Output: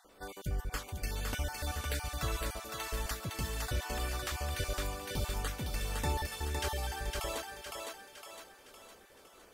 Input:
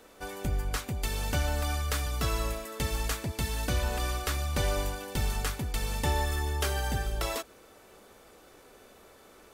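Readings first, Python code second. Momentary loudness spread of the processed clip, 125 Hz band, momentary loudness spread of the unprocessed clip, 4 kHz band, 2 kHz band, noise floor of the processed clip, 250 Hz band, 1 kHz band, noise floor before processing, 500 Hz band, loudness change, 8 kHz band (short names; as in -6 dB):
13 LU, -6.5 dB, 4 LU, -4.0 dB, -4.0 dB, -59 dBFS, -6.5 dB, -4.5 dB, -56 dBFS, -5.5 dB, -5.5 dB, -4.5 dB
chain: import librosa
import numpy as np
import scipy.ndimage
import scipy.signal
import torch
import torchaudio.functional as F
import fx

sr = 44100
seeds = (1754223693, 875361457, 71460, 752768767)

y = fx.spec_dropout(x, sr, seeds[0], share_pct=27)
y = fx.echo_thinned(y, sr, ms=510, feedback_pct=50, hz=390.0, wet_db=-3)
y = y * 10.0 ** (-5.0 / 20.0)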